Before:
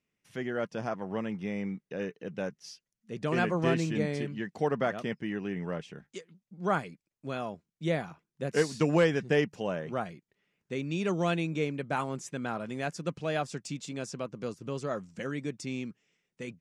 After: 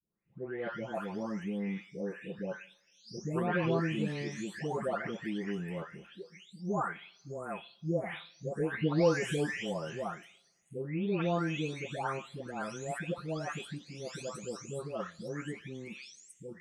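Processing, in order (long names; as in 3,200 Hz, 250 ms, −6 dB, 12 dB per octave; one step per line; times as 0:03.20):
every frequency bin delayed by itself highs late, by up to 698 ms
coupled-rooms reverb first 0.52 s, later 1.6 s, from −19 dB, DRR 16.5 dB
level −1.5 dB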